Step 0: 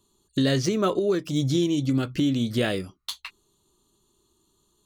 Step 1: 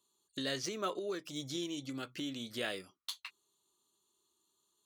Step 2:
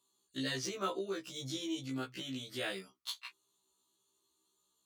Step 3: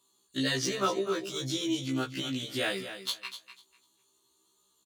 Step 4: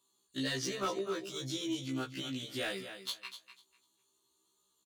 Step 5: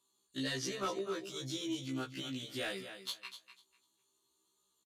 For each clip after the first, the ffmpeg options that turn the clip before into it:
-af "highpass=f=820:p=1,volume=-8dB"
-af "afftfilt=real='re*1.73*eq(mod(b,3),0)':imag='im*1.73*eq(mod(b,3),0)':win_size=2048:overlap=0.75,volume=2.5dB"
-af "aecho=1:1:248|496|744:0.282|0.0535|0.0102,volume=7.5dB"
-af "volume=22.5dB,asoftclip=hard,volume=-22.5dB,volume=-5.5dB"
-af "aresample=32000,aresample=44100,volume=-2dB"

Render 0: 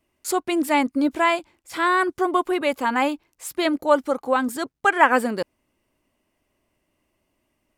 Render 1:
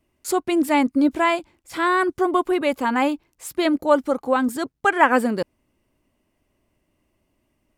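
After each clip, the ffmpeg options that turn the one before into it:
-af "lowshelf=f=350:g=7,volume=-1dB"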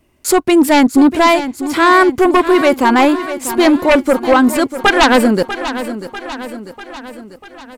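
-filter_complex "[0:a]aeval=exprs='0.841*sin(PI/2*3.55*val(0)/0.841)':c=same,asplit=2[a][b];[b]aecho=0:1:644|1288|1932|2576|3220|3864:0.251|0.141|0.0788|0.0441|0.0247|0.0138[c];[a][c]amix=inputs=2:normalize=0,volume=-3dB"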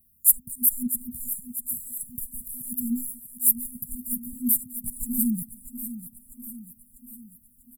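-filter_complex "[0:a]asplit=2[a][b];[b]adelay=240,highpass=300,lowpass=3.4k,asoftclip=type=hard:threshold=-10dB,volume=-21dB[c];[a][c]amix=inputs=2:normalize=0,afftfilt=real='re*(1-between(b*sr/4096,250,7000))':imag='im*(1-between(b*sr/4096,250,7000))':win_size=4096:overlap=0.75,aexciter=amount=12.8:drive=5.8:freq=10k,volume=-11.5dB"

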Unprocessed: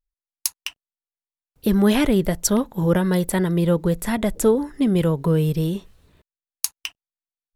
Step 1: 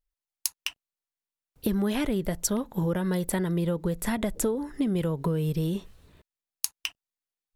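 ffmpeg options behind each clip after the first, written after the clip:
-af "acompressor=threshold=-24dB:ratio=6"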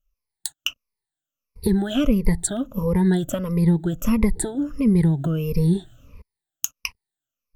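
-af "afftfilt=real='re*pow(10,22/40*sin(2*PI*(0.87*log(max(b,1)*sr/1024/100)/log(2)-(-1.5)*(pts-256)/sr)))':imag='im*pow(10,22/40*sin(2*PI*(0.87*log(max(b,1)*sr/1024/100)/log(2)-(-1.5)*(pts-256)/sr)))':win_size=1024:overlap=0.75,lowshelf=f=160:g=12,volume=-2dB"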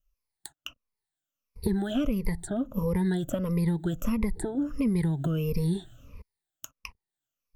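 -filter_complex "[0:a]acrossover=split=800|1700[a][b][c];[a]acompressor=threshold=-23dB:ratio=4[d];[b]acompressor=threshold=-44dB:ratio=4[e];[c]acompressor=threshold=-42dB:ratio=4[f];[d][e][f]amix=inputs=3:normalize=0,volume=-1.5dB"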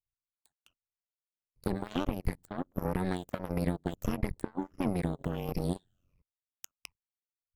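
-af "aeval=exprs='0.2*(cos(1*acos(clip(val(0)/0.2,-1,1)))-cos(1*PI/2))+0.0316*(cos(7*acos(clip(val(0)/0.2,-1,1)))-cos(7*PI/2))':c=same,tremolo=f=91:d=0.947"

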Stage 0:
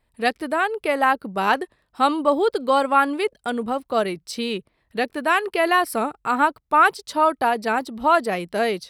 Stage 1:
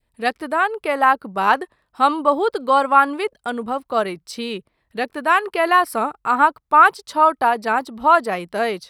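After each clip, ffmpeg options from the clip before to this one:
-af "adynamicequalizer=threshold=0.0316:dfrequency=1100:dqfactor=1.1:tfrequency=1100:tqfactor=1.1:attack=5:release=100:ratio=0.375:range=3.5:mode=boostabove:tftype=bell,volume=-1.5dB"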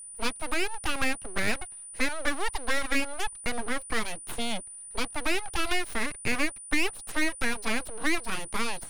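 -filter_complex "[0:a]aeval=exprs='abs(val(0))':c=same,acrossover=split=290|1900|4900[a][b][c][d];[a]acompressor=threshold=-27dB:ratio=4[e];[b]acompressor=threshold=-34dB:ratio=4[f];[c]acompressor=threshold=-33dB:ratio=4[g];[d]acompressor=threshold=-42dB:ratio=4[h];[e][f][g][h]amix=inputs=4:normalize=0,aeval=exprs='val(0)+0.00891*sin(2*PI*9400*n/s)':c=same"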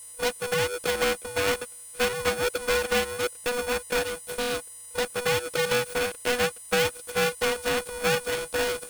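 -af "aeval=exprs='val(0)*sgn(sin(2*PI*490*n/s))':c=same"

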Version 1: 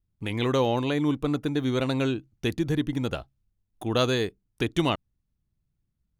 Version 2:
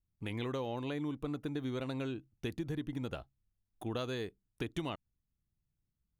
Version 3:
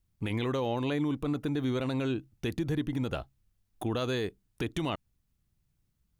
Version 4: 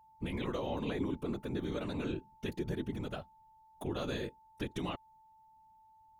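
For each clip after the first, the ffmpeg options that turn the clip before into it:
-af "equalizer=f=5.8k:t=o:w=1.4:g=-3.5,acompressor=threshold=-26dB:ratio=6,volume=-7.5dB"
-af "alimiter=level_in=6.5dB:limit=-24dB:level=0:latency=1:release=25,volume=-6.5dB,volume=9dB"
-af "afftfilt=real='hypot(re,im)*cos(2*PI*random(0))':imag='hypot(re,im)*sin(2*PI*random(1))':win_size=512:overlap=0.75,aeval=exprs='val(0)+0.001*sin(2*PI*880*n/s)':c=same"

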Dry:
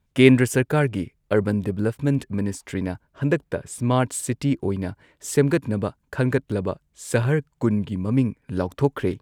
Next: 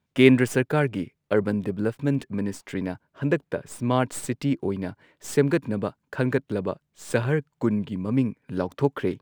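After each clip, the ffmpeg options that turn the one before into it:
-filter_complex "[0:a]acrossover=split=5800[a][b];[a]highpass=130[c];[b]aeval=exprs='max(val(0),0)':c=same[d];[c][d]amix=inputs=2:normalize=0,volume=-1.5dB"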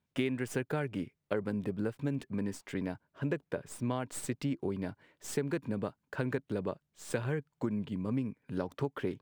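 -af "acompressor=threshold=-22dB:ratio=16,volume=-6dB"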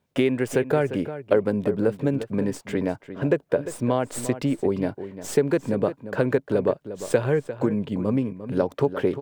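-filter_complex "[0:a]equalizer=f=530:w=1.1:g=8,asplit=2[a][b];[b]adelay=349.9,volume=-12dB,highshelf=f=4k:g=-7.87[c];[a][c]amix=inputs=2:normalize=0,volume=7.5dB"

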